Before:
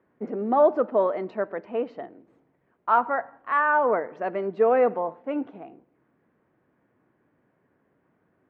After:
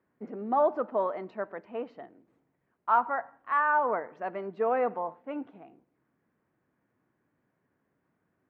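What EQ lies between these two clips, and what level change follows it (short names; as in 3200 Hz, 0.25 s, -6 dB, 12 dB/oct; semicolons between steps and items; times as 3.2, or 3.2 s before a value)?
dynamic EQ 910 Hz, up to +5 dB, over -35 dBFS, Q 1.1; bell 480 Hz -4 dB 1.6 oct; -6.0 dB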